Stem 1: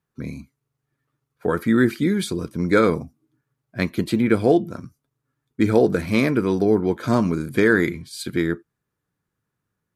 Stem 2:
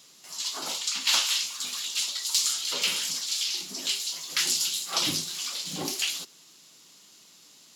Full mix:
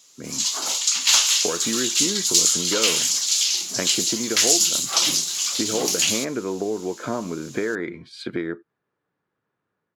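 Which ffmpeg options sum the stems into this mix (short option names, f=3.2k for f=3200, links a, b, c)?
-filter_complex "[0:a]lowpass=3.4k,equalizer=f=550:w=0.61:g=5.5,acompressor=threshold=-23dB:ratio=6,volume=-6.5dB[a];[1:a]equalizer=f=6.6k:t=o:w=0.42:g=8,volume=-3dB[b];[a][b]amix=inputs=2:normalize=0,dynaudnorm=f=180:g=3:m=8.5dB,highpass=f=310:p=1"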